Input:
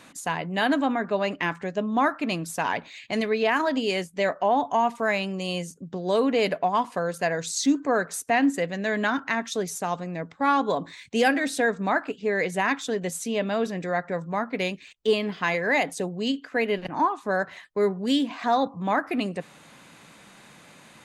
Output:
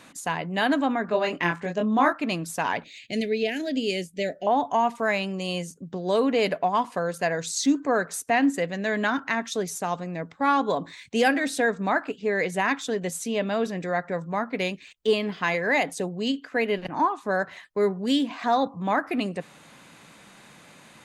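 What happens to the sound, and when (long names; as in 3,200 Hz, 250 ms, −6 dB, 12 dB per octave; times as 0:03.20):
0:01.06–0:02.13: double-tracking delay 23 ms −3.5 dB
0:02.84–0:04.47: Butterworth band-reject 1,100 Hz, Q 0.66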